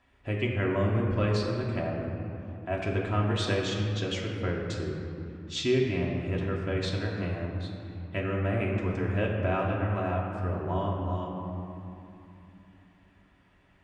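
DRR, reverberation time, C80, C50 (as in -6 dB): -3.0 dB, 2.9 s, 3.0 dB, 2.0 dB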